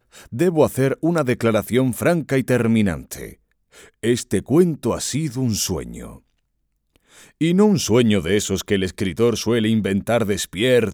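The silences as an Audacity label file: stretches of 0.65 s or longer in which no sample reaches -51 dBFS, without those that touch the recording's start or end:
6.200000	6.960000	silence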